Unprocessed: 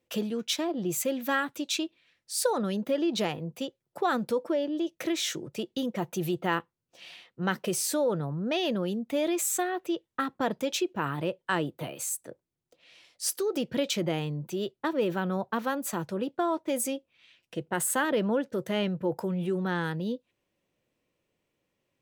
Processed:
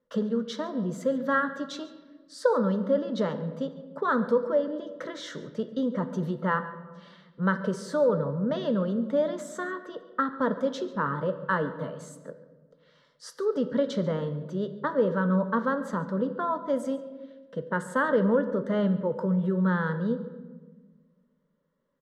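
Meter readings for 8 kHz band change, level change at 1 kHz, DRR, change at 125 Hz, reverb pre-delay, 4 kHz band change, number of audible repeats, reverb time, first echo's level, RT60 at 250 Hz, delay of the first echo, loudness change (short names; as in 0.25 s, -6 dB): -16.5 dB, +2.0 dB, 9.0 dB, +4.0 dB, 3 ms, -9.5 dB, 1, 1.4 s, -19.5 dB, 1.9 s, 0.141 s, +2.0 dB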